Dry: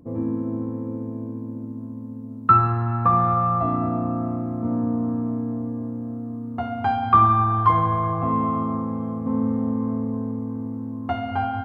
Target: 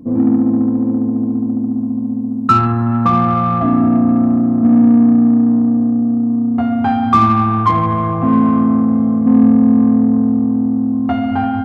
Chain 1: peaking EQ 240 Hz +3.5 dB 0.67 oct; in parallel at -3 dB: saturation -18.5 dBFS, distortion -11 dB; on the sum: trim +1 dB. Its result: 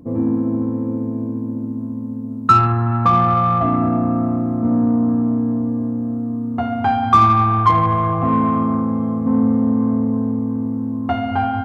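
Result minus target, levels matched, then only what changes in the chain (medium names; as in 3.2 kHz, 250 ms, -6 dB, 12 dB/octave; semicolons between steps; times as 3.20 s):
250 Hz band -2.5 dB
change: peaking EQ 240 Hz +13 dB 0.67 oct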